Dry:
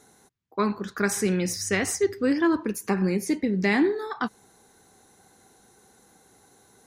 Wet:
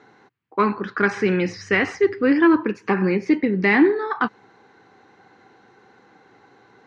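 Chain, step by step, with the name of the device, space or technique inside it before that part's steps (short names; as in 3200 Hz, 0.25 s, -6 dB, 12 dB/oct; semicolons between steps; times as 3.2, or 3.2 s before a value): overdrive pedal into a guitar cabinet (overdrive pedal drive 9 dB, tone 3600 Hz, clips at -11.5 dBFS; speaker cabinet 93–3900 Hz, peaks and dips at 120 Hz +6 dB, 310 Hz +4 dB, 650 Hz -5 dB, 3600 Hz -8 dB); gain +5.5 dB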